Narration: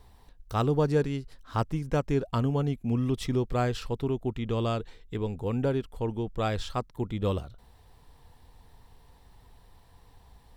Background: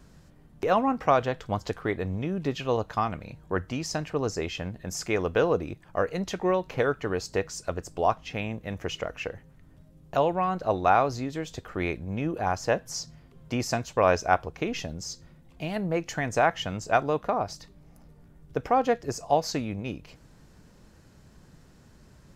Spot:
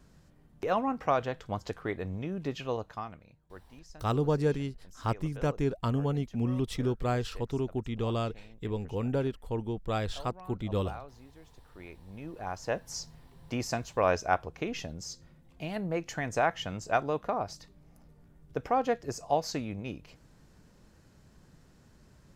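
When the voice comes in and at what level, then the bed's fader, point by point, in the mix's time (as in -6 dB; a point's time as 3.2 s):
3.50 s, -2.5 dB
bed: 2.65 s -5.5 dB
3.61 s -22.5 dB
11.57 s -22.5 dB
12.89 s -4.5 dB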